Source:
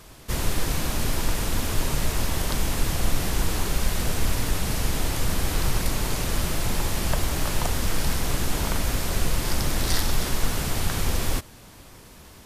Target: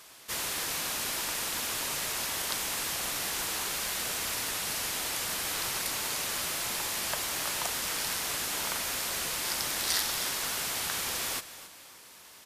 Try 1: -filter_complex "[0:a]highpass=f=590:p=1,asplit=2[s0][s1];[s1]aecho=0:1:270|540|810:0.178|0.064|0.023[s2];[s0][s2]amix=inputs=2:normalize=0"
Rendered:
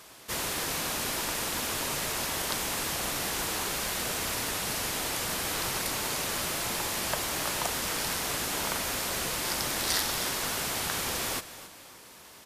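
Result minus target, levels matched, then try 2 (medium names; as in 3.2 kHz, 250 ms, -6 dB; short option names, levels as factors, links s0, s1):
500 Hz band +4.5 dB
-filter_complex "[0:a]highpass=f=1400:p=1,asplit=2[s0][s1];[s1]aecho=0:1:270|540|810:0.178|0.064|0.023[s2];[s0][s2]amix=inputs=2:normalize=0"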